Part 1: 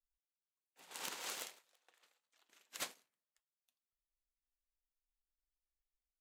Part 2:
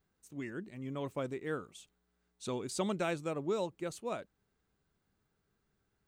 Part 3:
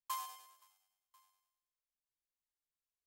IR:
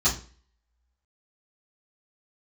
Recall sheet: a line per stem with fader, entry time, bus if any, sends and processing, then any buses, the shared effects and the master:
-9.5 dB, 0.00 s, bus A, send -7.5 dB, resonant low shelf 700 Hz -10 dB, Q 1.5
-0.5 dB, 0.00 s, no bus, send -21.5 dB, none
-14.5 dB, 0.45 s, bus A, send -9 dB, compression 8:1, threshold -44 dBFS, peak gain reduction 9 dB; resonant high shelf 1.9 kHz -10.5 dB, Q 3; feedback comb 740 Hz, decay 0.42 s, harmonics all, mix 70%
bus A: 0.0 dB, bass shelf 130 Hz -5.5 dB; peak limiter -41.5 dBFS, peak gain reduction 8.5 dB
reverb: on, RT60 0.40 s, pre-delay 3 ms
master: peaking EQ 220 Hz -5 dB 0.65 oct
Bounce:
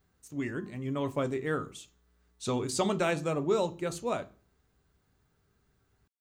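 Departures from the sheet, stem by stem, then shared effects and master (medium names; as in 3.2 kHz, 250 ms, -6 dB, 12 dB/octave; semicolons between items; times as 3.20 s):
stem 1: muted; stem 2 -0.5 dB -> +6.5 dB; master: missing peaking EQ 220 Hz -5 dB 0.65 oct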